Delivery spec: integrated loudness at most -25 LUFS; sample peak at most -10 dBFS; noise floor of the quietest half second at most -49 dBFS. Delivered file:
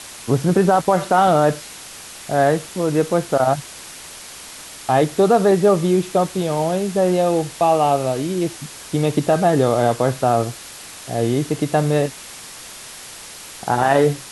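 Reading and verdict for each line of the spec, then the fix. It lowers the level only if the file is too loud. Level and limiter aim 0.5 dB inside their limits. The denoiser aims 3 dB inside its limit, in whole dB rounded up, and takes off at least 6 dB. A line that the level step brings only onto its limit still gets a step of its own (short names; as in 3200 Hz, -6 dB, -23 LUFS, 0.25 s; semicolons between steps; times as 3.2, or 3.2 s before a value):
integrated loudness -18.5 LUFS: fail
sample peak -4.5 dBFS: fail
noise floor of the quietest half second -37 dBFS: fail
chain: denoiser 8 dB, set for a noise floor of -37 dBFS; gain -7 dB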